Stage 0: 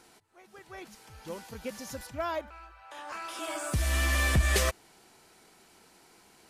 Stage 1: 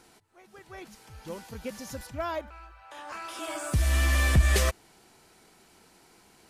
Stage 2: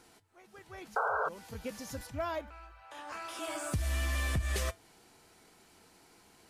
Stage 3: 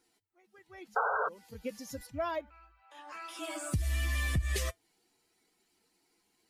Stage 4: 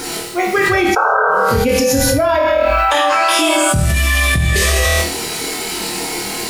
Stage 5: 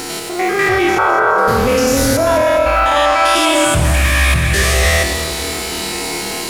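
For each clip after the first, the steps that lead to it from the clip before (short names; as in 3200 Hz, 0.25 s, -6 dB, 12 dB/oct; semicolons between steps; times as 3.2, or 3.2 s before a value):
low shelf 200 Hz +5 dB
resonator 95 Hz, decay 0.17 s, harmonics odd, mix 50%; painted sound noise, 0.96–1.29, 410–1600 Hz -24 dBFS; compressor 5:1, threshold -31 dBFS, peak gain reduction 11 dB; gain +1.5 dB
per-bin expansion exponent 1.5; gain +3 dB
flutter echo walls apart 4.4 m, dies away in 0.4 s; reverb, pre-delay 3 ms, DRR 2.5 dB; fast leveller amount 100%; gain +8 dB
stepped spectrum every 0.1 s; split-band echo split 2000 Hz, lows 0.273 s, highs 0.21 s, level -10 dB; Doppler distortion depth 0.28 ms; gain +1.5 dB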